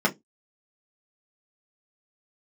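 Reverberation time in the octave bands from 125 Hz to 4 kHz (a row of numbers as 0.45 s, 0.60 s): 0.20 s, 0.25 s, 0.20 s, 0.10 s, 0.15 s, 0.15 s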